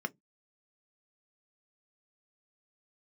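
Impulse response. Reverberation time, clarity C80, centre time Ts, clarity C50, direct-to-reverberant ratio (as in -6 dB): 0.15 s, 44.0 dB, 2 ms, 29.5 dB, 7.0 dB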